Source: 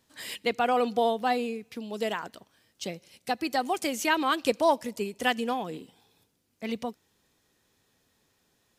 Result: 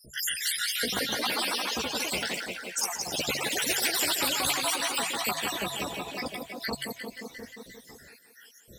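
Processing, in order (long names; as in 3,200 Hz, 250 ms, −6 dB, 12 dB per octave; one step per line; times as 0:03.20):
time-frequency cells dropped at random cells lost 85%
hum removal 46.61 Hz, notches 3
multi-voice chorus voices 4, 0.51 Hz, delay 15 ms, depth 1.5 ms
feedback echo with a high-pass in the loop 176 ms, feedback 63%, high-pass 160 Hz, level −11.5 dB
delay with pitch and tempo change per echo 265 ms, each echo +2 semitones, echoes 3, each echo −6 dB
every bin compressed towards the loudest bin 4 to 1
level +5.5 dB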